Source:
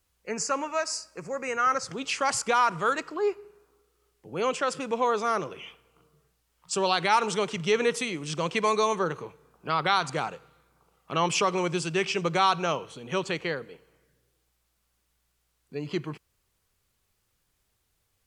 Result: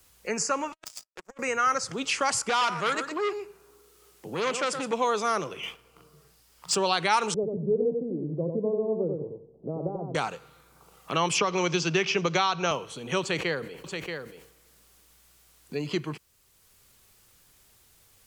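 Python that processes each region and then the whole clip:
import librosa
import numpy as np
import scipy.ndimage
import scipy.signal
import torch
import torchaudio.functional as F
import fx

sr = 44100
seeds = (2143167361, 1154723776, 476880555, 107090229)

y = fx.chain(x, sr, fx.highpass(hz=330.0, slope=12),
    fx.over_compress(threshold_db=-35.0, ratio=-0.5),
    fx.power_curve(exponent=3.0), at=(0.72, 1.39))
y = fx.chain(y, sr, fx.highpass(hz=85.0, slope=12),
    fx.echo_single(ms=119, db=-10.5),
    fx.transformer_sat(knee_hz=2100.0), at=(2.49, 4.93))
y = fx.chain(y, sr, fx.peak_eq(hz=4900.0, db=5.5, octaves=0.25),
    fx.leveller(passes=1), at=(5.63, 6.76))
y = fx.chain(y, sr, fx.steep_lowpass(hz=590.0, slope=36),
    fx.echo_feedback(ms=91, feedback_pct=17, wet_db=-5), at=(7.34, 10.15))
y = fx.chain(y, sr, fx.ellip_lowpass(hz=6400.0, order=4, stop_db=50),
    fx.band_squash(depth_pct=100), at=(11.38, 12.71))
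y = fx.chain(y, sr, fx.echo_single(ms=630, db=-9.5),
    fx.sustainer(db_per_s=94.0), at=(13.21, 15.82))
y = fx.high_shelf(y, sr, hz=4400.0, db=5.0)
y = fx.band_squash(y, sr, depth_pct=40)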